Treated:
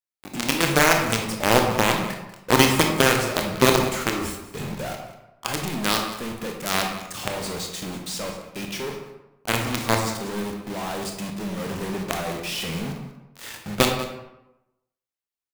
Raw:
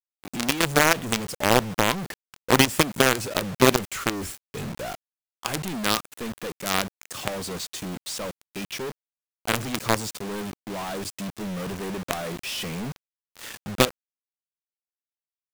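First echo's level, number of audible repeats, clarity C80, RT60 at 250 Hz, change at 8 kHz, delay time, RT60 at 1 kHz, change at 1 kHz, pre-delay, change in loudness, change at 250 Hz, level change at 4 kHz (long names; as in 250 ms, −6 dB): −15.5 dB, 1, 7.0 dB, 0.95 s, +1.5 dB, 190 ms, 0.95 s, +2.5 dB, 23 ms, +2.0 dB, +2.0 dB, +2.0 dB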